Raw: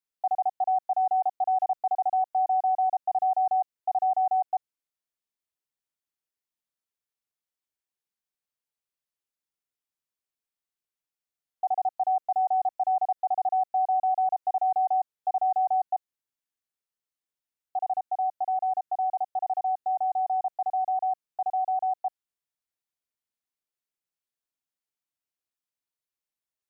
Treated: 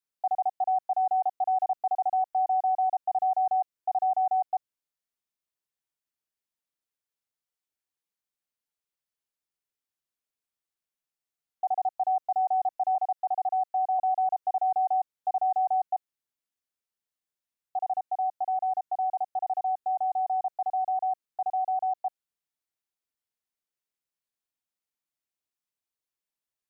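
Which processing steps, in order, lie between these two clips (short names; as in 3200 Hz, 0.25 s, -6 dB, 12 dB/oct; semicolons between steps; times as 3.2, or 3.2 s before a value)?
12.95–13.99 HPF 520 Hz 12 dB/oct; gain -1 dB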